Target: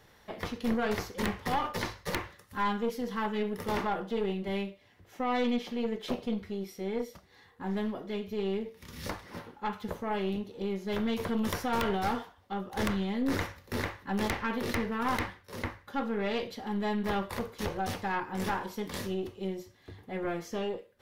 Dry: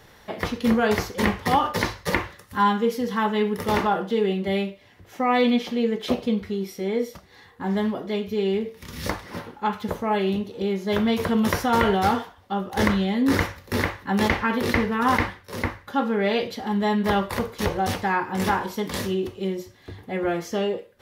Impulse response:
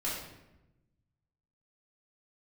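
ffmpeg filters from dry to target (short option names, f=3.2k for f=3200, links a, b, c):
-af "aeval=exprs='(mod(2.37*val(0)+1,2)-1)/2.37':c=same,aeval=exprs='(tanh(6.31*val(0)+0.5)-tanh(0.5))/6.31':c=same,volume=-6.5dB"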